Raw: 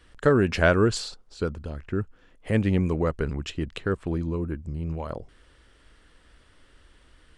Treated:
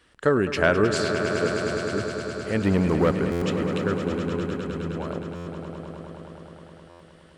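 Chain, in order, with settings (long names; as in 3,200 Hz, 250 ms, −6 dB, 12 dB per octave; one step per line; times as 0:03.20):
0:02.63–0:03.19: leveller curve on the samples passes 2
high-pass filter 180 Hz 6 dB per octave
echo that builds up and dies away 104 ms, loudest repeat 5, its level −11 dB
buffer that repeats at 0:03.31/0:05.35/0:06.89, samples 512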